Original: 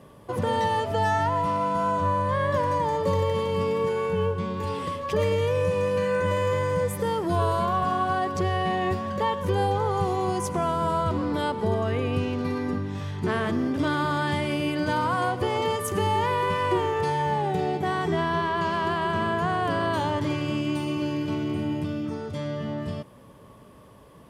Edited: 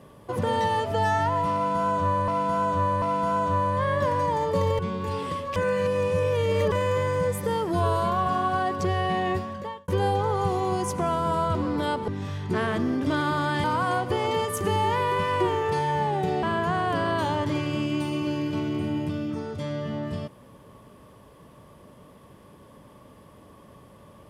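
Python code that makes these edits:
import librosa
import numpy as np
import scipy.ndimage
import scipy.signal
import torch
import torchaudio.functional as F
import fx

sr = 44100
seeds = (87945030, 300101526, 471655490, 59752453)

y = fx.edit(x, sr, fx.repeat(start_s=1.54, length_s=0.74, count=3),
    fx.cut(start_s=3.31, length_s=1.04),
    fx.reverse_span(start_s=5.12, length_s=1.16),
    fx.fade_out_span(start_s=8.84, length_s=0.6),
    fx.cut(start_s=11.64, length_s=1.17),
    fx.cut(start_s=14.37, length_s=0.58),
    fx.cut(start_s=17.74, length_s=1.44), tone=tone)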